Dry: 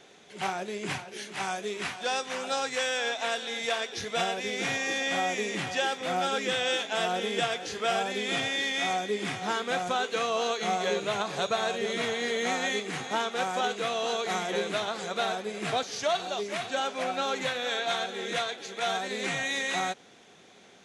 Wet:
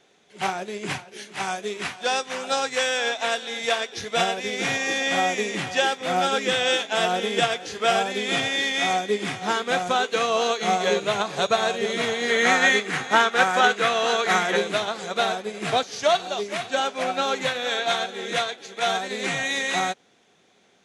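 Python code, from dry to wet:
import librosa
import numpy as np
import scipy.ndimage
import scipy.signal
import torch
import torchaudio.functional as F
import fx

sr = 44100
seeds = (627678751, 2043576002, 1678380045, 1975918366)

y = fx.dynamic_eq(x, sr, hz=1600.0, q=1.4, threshold_db=-46.0, ratio=4.0, max_db=8, at=(12.28, 14.57))
y = fx.upward_expand(y, sr, threshold_db=-51.0, expansion=1.5)
y = y * 10.0 ** (8.5 / 20.0)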